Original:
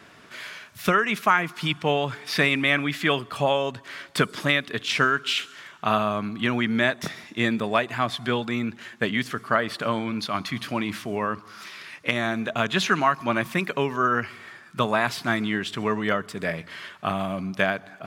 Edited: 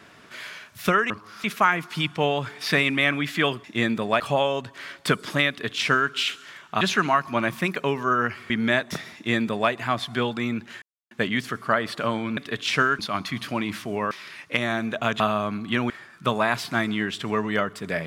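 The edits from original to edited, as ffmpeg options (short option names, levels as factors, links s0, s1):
-filter_complex "[0:a]asplit=13[s0][s1][s2][s3][s4][s5][s6][s7][s8][s9][s10][s11][s12];[s0]atrim=end=1.102[s13];[s1]atrim=start=11.308:end=11.652[s14];[s2]atrim=start=1.098:end=3.302[s15];[s3]atrim=start=7.258:end=7.822[s16];[s4]atrim=start=3.298:end=5.912[s17];[s5]atrim=start=12.738:end=14.432[s18];[s6]atrim=start=6.608:end=8.93,asetpts=PTS-STARTPTS,afade=t=out:st=2.318:d=0.004:c=hsin,apad=pad_dur=0.29[s19];[s7]atrim=start=8.93:end=10.192,asetpts=PTS-STARTPTS,afade=t=in:d=0.004:c=hsin[s20];[s8]atrim=start=4.588:end=5.212[s21];[s9]atrim=start=10.188:end=11.312[s22];[s10]atrim=start=11.648:end=12.742[s23];[s11]atrim=start=5.908:end=6.612[s24];[s12]atrim=start=14.428[s25];[s13][s14]acrossfade=d=0.004:c1=hsin:c2=hsin[s26];[s26][s15]acrossfade=d=0.004:c1=hsin:c2=hsin[s27];[s27][s16]acrossfade=d=0.004:c1=hsin:c2=hsin[s28];[s28][s17]acrossfade=d=0.004:c1=hsin:c2=hsin[s29];[s29][s18]acrossfade=d=0.004:c1=hsin:c2=hsin[s30];[s19][s20]concat=n=2:v=0:a=1[s31];[s30][s31]acrossfade=d=0.004:c1=hsin:c2=hsin[s32];[s32][s21]acrossfade=d=0.004:c1=hsin:c2=hsin[s33];[s33][s22]acrossfade=d=0.004:c1=hsin:c2=hsin[s34];[s34][s23]acrossfade=d=0.004:c1=hsin:c2=hsin[s35];[s35][s24]acrossfade=d=0.004:c1=hsin:c2=hsin[s36];[s36][s25]acrossfade=d=0.004:c1=hsin:c2=hsin"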